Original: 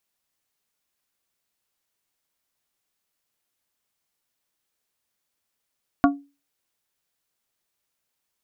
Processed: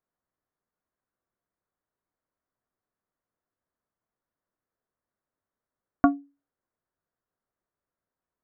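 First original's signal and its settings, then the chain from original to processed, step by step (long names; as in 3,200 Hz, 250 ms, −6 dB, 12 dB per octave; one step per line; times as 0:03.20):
struck glass plate, lowest mode 282 Hz, modes 4, decay 0.30 s, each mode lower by 3 dB, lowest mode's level −11 dB
adaptive Wiener filter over 15 samples
low-pass filter 2,000 Hz 24 dB per octave
notch filter 840 Hz, Q 12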